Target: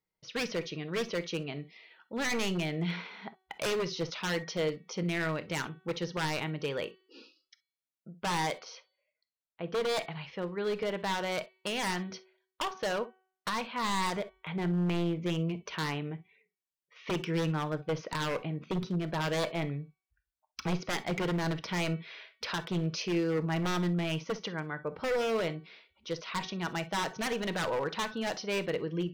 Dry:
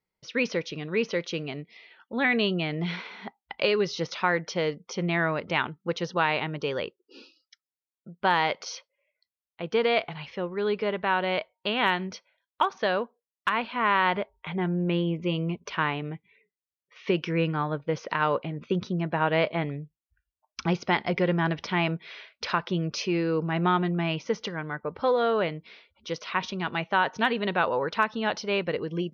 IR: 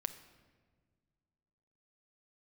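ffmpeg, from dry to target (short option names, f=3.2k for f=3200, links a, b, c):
-filter_complex "[0:a]asettb=1/sr,asplit=3[a][b][c];[a]atrim=end=8.564[d];[b]atrim=start=8.56:end=9.89,asetpts=PTS-STARTPTS,afade=t=in:d=0.004:c=qsin,afade=t=out:st=1.326:d=0.004:c=qsin,highshelf=f=4.2k:g=-11.5[e];[c]atrim=start=9.886[f];[d][e]acrossfade=d=0.004:c1=hsin:c2=qsin[g];[g][f]acrossfade=d=0.004:c1=qsin:c2=hsin,bandreject=f=376.4:t=h:w=4,bandreject=f=752.8:t=h:w=4,bandreject=f=1.1292k:t=h:w=4,bandreject=f=1.5056k:t=h:w=4,bandreject=f=1.882k:t=h:w=4,bandreject=f=2.2584k:t=h:w=4,bandreject=f=2.6348k:t=h:w=4,bandreject=f=3.0112k:t=h:w=4,bandreject=f=3.3876k:t=h:w=4,bandreject=f=3.764k:t=h:w=4,bandreject=f=4.1404k:t=h:w=4,bandreject=f=4.5168k:t=h:w=4,asettb=1/sr,asplit=3[h][i][j];[h]atrim=end=5.034[k];[i]atrim=start=5.03:end=6.7,asetpts=PTS-STARTPTS,afade=t=in:d=0.004:c=qsin,afade=t=out:st=1.666:d=0.004:c=qsin,adynamicequalizer=threshold=0.0112:dfrequency=840:dqfactor=0.84:tfrequency=840:tqfactor=0.84:attack=5:release=100:ratio=0.375:range=2:mode=cutabove:tftype=bell[l];[j]atrim=start=6.696[m];[k][l]acrossfade=d=0.004:c1=hsin:c2=qsin[n];[n][m]acrossfade=d=0.004:c1=qsin:c2=hsin,aeval=exprs='0.0841*(abs(mod(val(0)/0.0841+3,4)-2)-1)':c=same[o];[1:a]atrim=start_sample=2205,atrim=end_sample=3087[p];[o][p]afir=irnorm=-1:irlink=0,volume=-3dB"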